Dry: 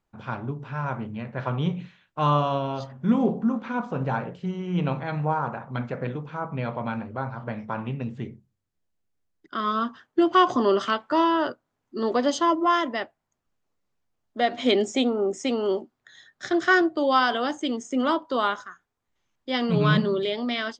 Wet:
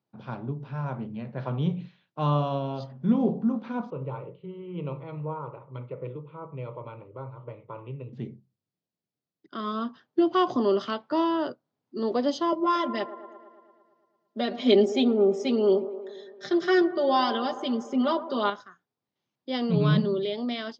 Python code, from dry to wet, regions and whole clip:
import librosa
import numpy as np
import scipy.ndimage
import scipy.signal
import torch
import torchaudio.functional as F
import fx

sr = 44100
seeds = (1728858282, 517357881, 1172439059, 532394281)

y = fx.chain(x, sr, fx.air_absorb(metres=300.0),
    fx.fixed_phaser(hz=1100.0, stages=8), at=(3.9, 8.13))
y = fx.chain(y, sr, fx.comb(ms=5.0, depth=0.92),
    fx.echo_wet_bandpass(ms=113, feedback_pct=66, hz=680.0, wet_db=-12.0), at=(12.52, 18.5))
y = scipy.signal.sosfilt(scipy.signal.cheby1(3, 1.0, [130.0, 4900.0], 'bandpass', fs=sr, output='sos'), y)
y = fx.peak_eq(y, sr, hz=1600.0, db=-9.0, octaves=2.1)